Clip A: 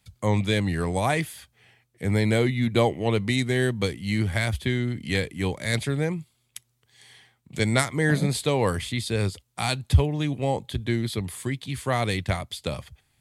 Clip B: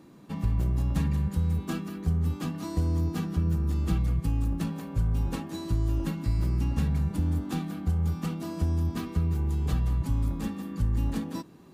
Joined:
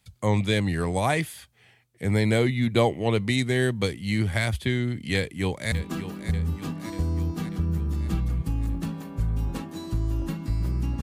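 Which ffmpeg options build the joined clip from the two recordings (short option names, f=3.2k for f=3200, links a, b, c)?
-filter_complex "[0:a]apad=whole_dur=11.02,atrim=end=11.02,atrim=end=5.722[a];[1:a]atrim=start=1.498:end=6.8[b];[a][b]acrossfade=d=0.004:c1=hsin:c2=hsin,asplit=2[c][d];[d]afade=t=in:st=5.15:d=0.01,afade=t=out:st=5.72:d=0.01,aecho=0:1:590|1180|1770|2360|2950|3540|4130:0.266073|0.159644|0.0957861|0.0574717|0.034483|0.0206898|0.0124139[e];[c][e]amix=inputs=2:normalize=0"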